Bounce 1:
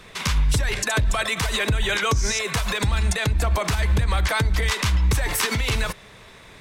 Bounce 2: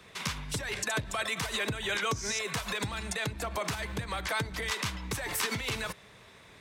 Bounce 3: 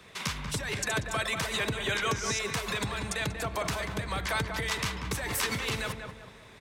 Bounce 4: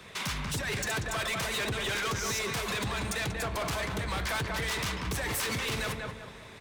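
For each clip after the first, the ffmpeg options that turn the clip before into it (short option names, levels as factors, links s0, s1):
-filter_complex "[0:a]highpass=59,acrossover=split=130|5000[s0][s1][s2];[s0]acompressor=threshold=0.0178:ratio=6[s3];[s3][s1][s2]amix=inputs=3:normalize=0,volume=0.398"
-filter_complex "[0:a]asplit=2[s0][s1];[s1]adelay=188,lowpass=f=1600:p=1,volume=0.562,asplit=2[s2][s3];[s3]adelay=188,lowpass=f=1600:p=1,volume=0.42,asplit=2[s4][s5];[s5]adelay=188,lowpass=f=1600:p=1,volume=0.42,asplit=2[s6][s7];[s7]adelay=188,lowpass=f=1600:p=1,volume=0.42,asplit=2[s8][s9];[s9]adelay=188,lowpass=f=1600:p=1,volume=0.42[s10];[s0][s2][s4][s6][s8][s10]amix=inputs=6:normalize=0,volume=1.12"
-af "aeval=exprs='0.15*(cos(1*acos(clip(val(0)/0.15,-1,1)))-cos(1*PI/2))+0.0473*(cos(5*acos(clip(val(0)/0.15,-1,1)))-cos(5*PI/2))':c=same,asoftclip=type=hard:threshold=0.0562,flanger=delay=7.2:depth=9.7:regen=-76:speed=1.8:shape=triangular"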